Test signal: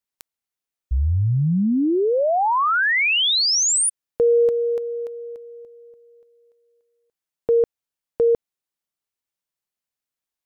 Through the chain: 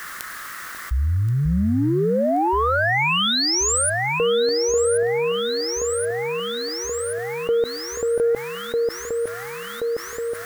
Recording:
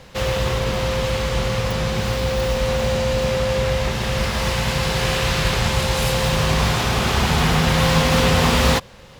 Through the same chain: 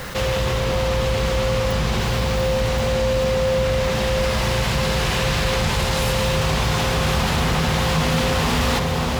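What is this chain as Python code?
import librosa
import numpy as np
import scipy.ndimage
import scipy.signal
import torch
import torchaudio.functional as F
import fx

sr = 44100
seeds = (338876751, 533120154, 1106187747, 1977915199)

p1 = fx.rider(x, sr, range_db=3, speed_s=0.5)
p2 = x + F.gain(torch.from_numpy(p1), -2.0).numpy()
p3 = 10.0 ** (-5.0 / 20.0) * np.tanh(p2 / 10.0 ** (-5.0 / 20.0))
p4 = p3 + fx.echo_alternate(p3, sr, ms=539, hz=1300.0, feedback_pct=74, wet_db=-4.0, dry=0)
p5 = fx.quant_dither(p4, sr, seeds[0], bits=8, dither='triangular')
p6 = fx.dmg_noise_band(p5, sr, seeds[1], low_hz=1100.0, high_hz=2000.0, level_db=-45.0)
p7 = fx.env_flatten(p6, sr, amount_pct=50)
y = F.gain(torch.from_numpy(p7), -8.5).numpy()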